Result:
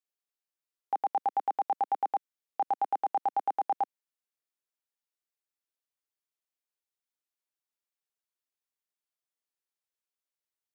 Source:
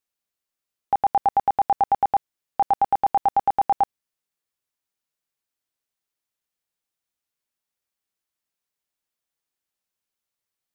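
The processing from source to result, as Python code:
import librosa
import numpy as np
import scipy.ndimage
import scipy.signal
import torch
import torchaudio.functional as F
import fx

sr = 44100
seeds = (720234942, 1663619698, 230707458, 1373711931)

y = scipy.signal.sosfilt(scipy.signal.butter(4, 270.0, 'highpass', fs=sr, output='sos'), x)
y = y * librosa.db_to_amplitude(-9.0)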